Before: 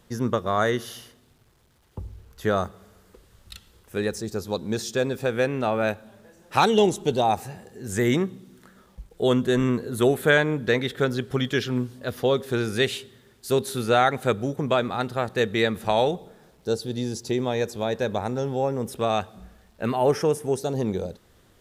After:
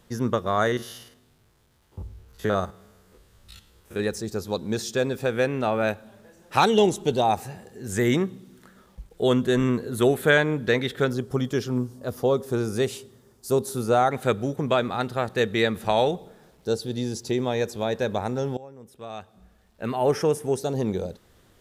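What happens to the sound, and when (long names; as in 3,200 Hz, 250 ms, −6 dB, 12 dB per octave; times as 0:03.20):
0:00.67–0:04.00: spectrum averaged block by block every 50 ms
0:11.13–0:14.11: flat-topped bell 2,500 Hz −9.5 dB
0:18.57–0:20.19: fade in quadratic, from −19 dB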